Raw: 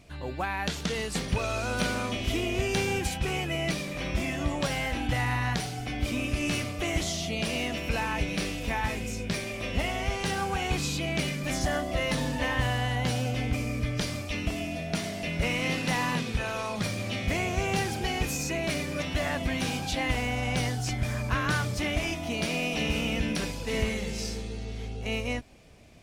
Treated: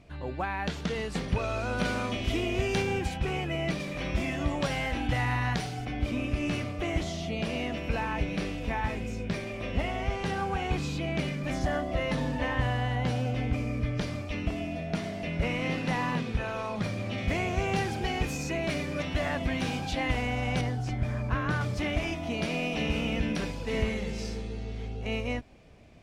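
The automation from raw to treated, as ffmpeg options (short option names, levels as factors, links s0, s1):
-af "asetnsamples=n=441:p=0,asendcmd='1.85 lowpass f 4000;2.82 lowpass f 2200;3.8 lowpass f 4000;5.85 lowpass f 1800;17.18 lowpass f 3100;20.61 lowpass f 1200;21.61 lowpass f 2600',lowpass=f=2200:p=1"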